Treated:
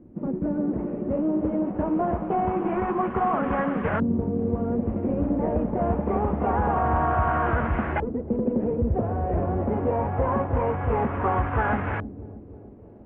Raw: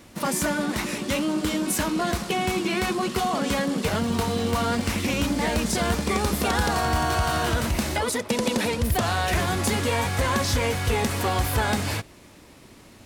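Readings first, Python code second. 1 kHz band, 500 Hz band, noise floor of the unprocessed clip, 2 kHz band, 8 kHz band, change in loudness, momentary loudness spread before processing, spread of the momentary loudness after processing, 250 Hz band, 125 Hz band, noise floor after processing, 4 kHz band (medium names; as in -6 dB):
+1.0 dB, +1.0 dB, -49 dBFS, -6.5 dB, under -40 dB, -1.0 dB, 2 LU, 5 LU, +1.0 dB, -0.5 dB, -44 dBFS, under -25 dB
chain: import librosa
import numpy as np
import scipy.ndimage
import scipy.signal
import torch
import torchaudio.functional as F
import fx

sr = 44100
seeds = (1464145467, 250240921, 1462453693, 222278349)

y = fx.cvsd(x, sr, bps=16000)
y = fx.quant_dither(y, sr, seeds[0], bits=10, dither='triangular')
y = fx.echo_feedback(y, sr, ms=315, feedback_pct=52, wet_db=-12)
y = fx.dmg_crackle(y, sr, seeds[1], per_s=79.0, level_db=-35.0)
y = fx.filter_lfo_lowpass(y, sr, shape='saw_up', hz=0.25, low_hz=330.0, high_hz=1600.0, q=1.5)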